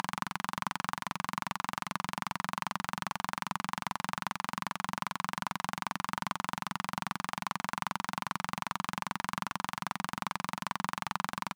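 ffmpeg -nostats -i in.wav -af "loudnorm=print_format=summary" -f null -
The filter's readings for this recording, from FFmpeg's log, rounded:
Input Integrated:    -36.3 LUFS
Input True Peak:     -13.0 dBTP
Input LRA:             0.2 LU
Input Threshold:     -46.3 LUFS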